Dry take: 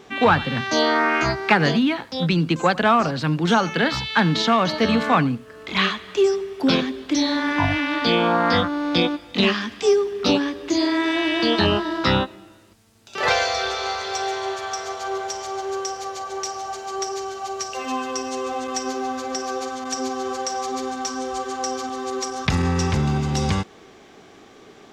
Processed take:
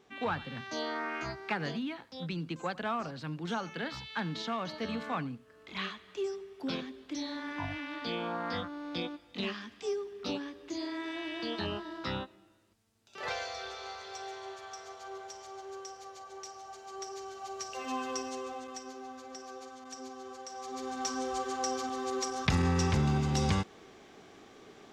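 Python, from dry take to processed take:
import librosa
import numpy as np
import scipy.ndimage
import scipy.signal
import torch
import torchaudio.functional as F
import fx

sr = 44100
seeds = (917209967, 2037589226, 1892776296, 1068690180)

y = fx.gain(x, sr, db=fx.line((16.65, -17.0), (18.13, -8.5), (18.87, -18.5), (20.48, -18.5), (21.06, -7.0)))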